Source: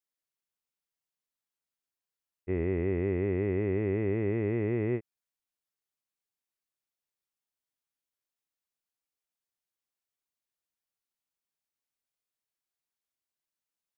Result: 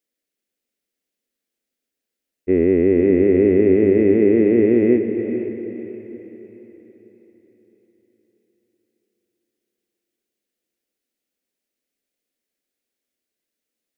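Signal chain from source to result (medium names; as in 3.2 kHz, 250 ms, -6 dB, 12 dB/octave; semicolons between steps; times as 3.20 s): graphic EQ 125/250/500/1000/2000 Hz -9/+12/+9/-11/+4 dB; echo that smears into a reverb 489 ms, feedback 42%, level -8 dB; trim +6.5 dB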